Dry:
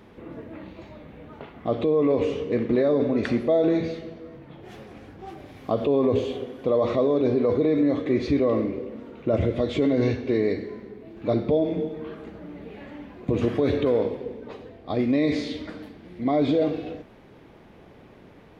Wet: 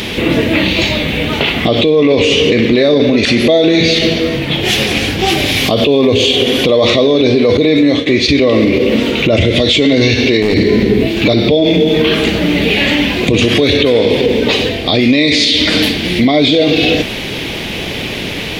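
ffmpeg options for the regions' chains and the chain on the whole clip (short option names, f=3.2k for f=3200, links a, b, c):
-filter_complex "[0:a]asettb=1/sr,asplit=3[a][b][c];[a]atrim=end=7.574[d];[b]atrim=start=7.57:end=8.29,asetpts=PTS-STARTPTS,afade=t=in:d=0.004:c=qsin,afade=t=out:st=0.716:d=0.004:c=qsin,agate=range=-33dB:threshold=-21dB:ratio=3:release=100:detection=peak,acompressor=threshold=-30dB:ratio=2.5:attack=3.2:release=140:knee=1:detection=peak[e];[c]atrim=start=8.286[f];[d][e]acrossfade=d=0.004:c1=hsin:c2=qsin[g];[g][f]acrossfade=d=0.004:c1=qsin:c2=hsin,asettb=1/sr,asplit=3[h][i][j];[h]atrim=end=10.424[k];[i]atrim=start=10.42:end=11.07,asetpts=PTS-STARTPTS,afade=t=in:d=0.004:c=qsin,afade=t=out:st=0.646:d=0.004:c=qsin,lowshelf=f=460:g=10.5,acompressor=threshold=-31dB:ratio=1.5:attack=3.2:release=140:knee=1:detection=peak,aeval=exprs='clip(val(0),-1,0.0631)':c=same[l];[j]atrim=start=11.066[m];[k][l]acrossfade=d=0.004:c1=hsin:c2=qsin[n];[n][m]acrossfade=d=0.004:c1=qsin:c2=hsin,highshelf=f=1.9k:t=q:w=1.5:g=14,acompressor=threshold=-30dB:ratio=4,alimiter=level_in=28dB:limit=-1dB:release=50:level=0:latency=1,volume=-1dB"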